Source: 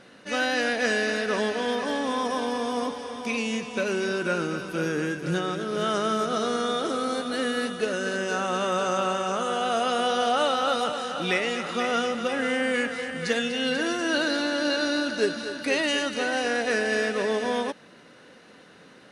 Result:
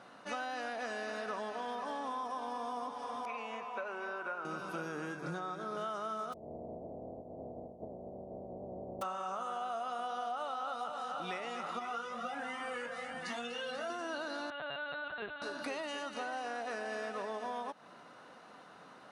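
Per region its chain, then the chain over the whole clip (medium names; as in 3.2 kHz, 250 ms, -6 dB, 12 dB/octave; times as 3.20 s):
3.25–4.45 s: high-pass 270 Hz 6 dB/octave + three-band isolator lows -12 dB, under 420 Hz, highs -17 dB, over 2.5 kHz
5.16–5.77 s: treble shelf 9.7 kHz -5.5 dB + band-stop 2.9 kHz, Q 6.1
6.32–9.01 s: spectral contrast reduction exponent 0.11 + steep low-pass 620 Hz 48 dB/octave
11.79–13.90 s: doubling 21 ms -3.5 dB + Shepard-style flanger rising 1.3 Hz
14.50–15.42 s: high-pass 1.1 kHz 6 dB/octave + LPC vocoder at 8 kHz pitch kept
whole clip: high-pass 73 Hz; high-order bell 930 Hz +10.5 dB 1.3 oct; compression 6:1, threshold -29 dBFS; trim -8 dB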